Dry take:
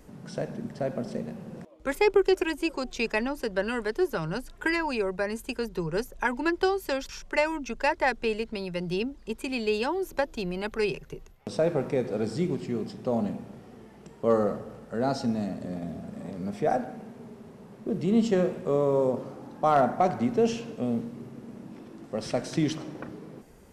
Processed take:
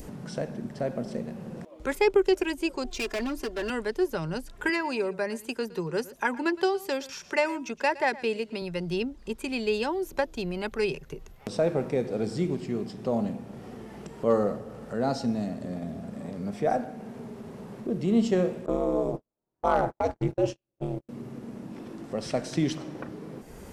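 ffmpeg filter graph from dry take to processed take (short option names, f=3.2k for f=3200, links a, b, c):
-filter_complex "[0:a]asettb=1/sr,asplit=3[a][b][c];[a]atrim=end=2.844[d];[b]atrim=start=2.84:end=3.7,asetpts=PTS-STARTPTS,afade=t=in:d=0.004:c=qsin,afade=t=out:st=0.856:d=0.004:c=qsin,aecho=1:1:2.9:0.84,atrim=end_sample=37926,volume=27dB,asoftclip=hard,volume=-27dB[e];[c]atrim=start=3.696[f];[d][e]acrossfade=d=0.004:c1=hsin:c2=qsin[g];[g][f]acrossfade=d=0.004:c1=qsin:c2=hsin,asettb=1/sr,asplit=3[h][i][j];[h]atrim=end=4.694[k];[i]atrim=start=4.69:end=8.62,asetpts=PTS-STARTPTS,afade=t=in:d=0.004:c=qsin,afade=t=out:st=3.926:d=0.004:c=qsin,highpass=150,aecho=1:1:115:0.119,atrim=end_sample=173313[l];[j]atrim=start=8.616[m];[k][l]acrossfade=d=0.004:c1=hsin:c2=qsin[n];[n][m]acrossfade=d=0.004:c1=qsin:c2=hsin,asettb=1/sr,asplit=3[o][p][q];[o]atrim=end=18.664[r];[p]atrim=start=18.66:end=21.09,asetpts=PTS-STARTPTS,afade=t=in:d=0.004:c=qsin,afade=t=out:st=2.426:d=0.004:c=qsin,aphaser=in_gain=1:out_gain=1:delay=2.4:decay=0.23:speed=1.9:type=sinusoidal,agate=range=-48dB:threshold=-29dB:ratio=16:release=100:detection=peak,aeval=exprs='val(0)*sin(2*PI*100*n/s)':c=same[s];[q]atrim=start=21.086[t];[r][s]acrossfade=d=0.004:c1=hsin:c2=qsin[u];[u][t]acrossfade=d=0.004:c1=qsin:c2=hsin,adynamicequalizer=threshold=0.00794:dfrequency=1300:dqfactor=1.4:tfrequency=1300:tqfactor=1.4:attack=5:release=100:ratio=0.375:range=2.5:mode=cutabove:tftype=bell,acompressor=mode=upward:threshold=-33dB:ratio=2.5"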